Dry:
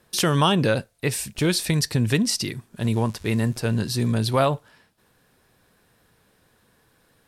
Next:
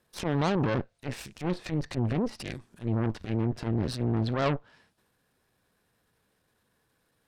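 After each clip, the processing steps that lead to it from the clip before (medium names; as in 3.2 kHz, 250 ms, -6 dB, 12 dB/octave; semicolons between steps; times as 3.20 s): low-pass that closes with the level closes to 1.2 kHz, closed at -18 dBFS; transient shaper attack -12 dB, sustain +6 dB; Chebyshev shaper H 7 -24 dB, 8 -15 dB, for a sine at -9.5 dBFS; trim -5.5 dB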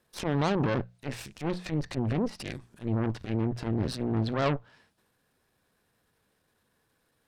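hum notches 60/120/180 Hz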